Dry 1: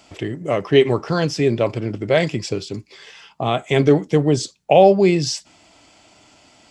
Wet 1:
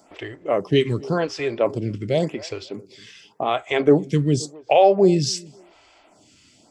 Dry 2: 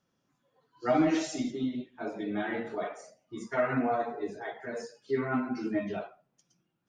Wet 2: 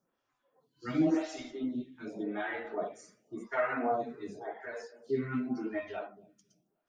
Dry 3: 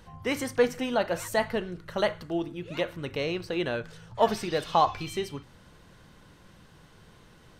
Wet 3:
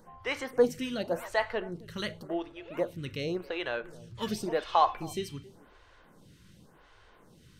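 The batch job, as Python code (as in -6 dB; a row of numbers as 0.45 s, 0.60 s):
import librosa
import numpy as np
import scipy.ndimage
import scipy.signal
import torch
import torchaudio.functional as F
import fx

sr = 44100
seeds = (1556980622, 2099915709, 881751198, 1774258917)

p1 = x + fx.echo_tape(x, sr, ms=269, feedback_pct=24, wet_db=-19.5, lp_hz=1400.0, drive_db=7.0, wow_cents=7, dry=0)
y = fx.stagger_phaser(p1, sr, hz=0.9)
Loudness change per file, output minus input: -2.5 LU, -3.0 LU, -3.0 LU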